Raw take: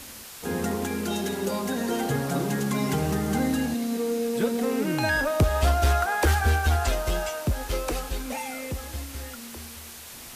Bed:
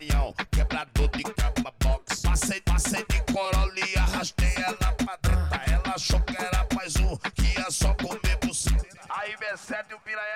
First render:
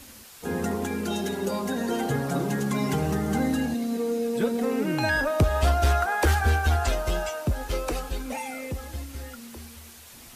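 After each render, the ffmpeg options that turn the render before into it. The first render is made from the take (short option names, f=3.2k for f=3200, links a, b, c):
-af "afftdn=nr=6:nf=-42"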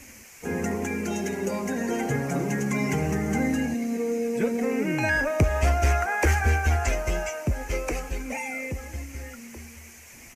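-af "firequalizer=gain_entry='entry(500,0);entry(1300,-4);entry(2200,9);entry(3600,-13);entry(6200,5);entry(8900,-4)':delay=0.05:min_phase=1"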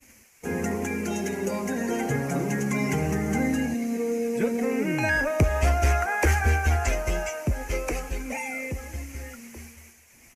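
-af "agate=range=-33dB:threshold=-40dB:ratio=3:detection=peak,equalizer=f=11k:t=o:w=0.2:g=5.5"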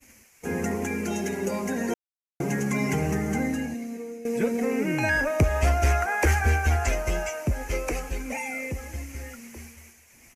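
-filter_complex "[0:a]asplit=4[a][b][c][d];[a]atrim=end=1.94,asetpts=PTS-STARTPTS,afade=t=out:st=1.936:d=0.004:c=hsin[e];[b]atrim=start=1.94:end=2.4,asetpts=PTS-STARTPTS,volume=0[f];[c]atrim=start=2.4:end=4.25,asetpts=PTS-STARTPTS,afade=t=in:d=0.004:c=hsin,afade=t=out:st=0.75:d=1.1:silence=0.199526[g];[d]atrim=start=4.25,asetpts=PTS-STARTPTS,afade=t=in:d=0.004:c=hsin:silence=0.199526[h];[e][f][g][h]concat=n=4:v=0:a=1"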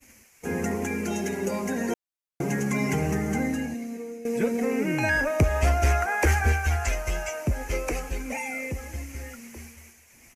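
-filter_complex "[0:a]asettb=1/sr,asplit=3[a][b][c];[a]atrim=end=6.524[d];[b]atrim=start=6.52:end=7.28,asetpts=PTS-STARTPTS,afade=t=in:d=0.004:c=qsin,afade=t=out:st=0.756:d=0.004:c=qsin,equalizer=f=280:t=o:w=2.7:g=-7[e];[c]atrim=start=7.276[f];[d][e]acrossfade=d=0.004:c1=hsin:c2=qsin[g];[g][f]acrossfade=d=0.004:c1=qsin:c2=hsin"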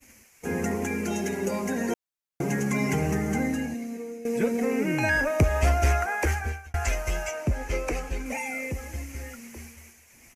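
-filter_complex "[0:a]asettb=1/sr,asplit=3[a][b][c];[a]atrim=end=7.314[d];[b]atrim=start=7.31:end=8.26,asetpts=PTS-STARTPTS,afade=t=in:d=0.004:c=qsin,afade=t=out:st=0.946:d=0.004:c=qsin,highshelf=f=9.3k:g=-9.5[e];[c]atrim=start=8.256[f];[d][e]acrossfade=d=0.004:c1=hsin:c2=qsin[g];[g][f]acrossfade=d=0.004:c1=qsin:c2=hsin,asplit=2[h][i];[h]atrim=end=6.74,asetpts=PTS-STARTPTS,afade=t=out:st=5.67:d=1.07:c=qsin[j];[i]atrim=start=6.74,asetpts=PTS-STARTPTS,afade=t=in:d=0.004:c=hsin[k];[j][k]concat=n=2:v=0:a=1"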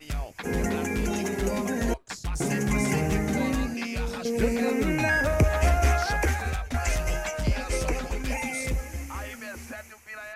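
-filter_complex "[1:a]volume=-8dB[a];[0:a][a]amix=inputs=2:normalize=0"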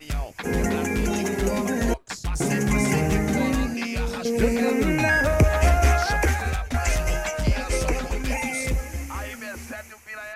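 -af "volume=3.5dB"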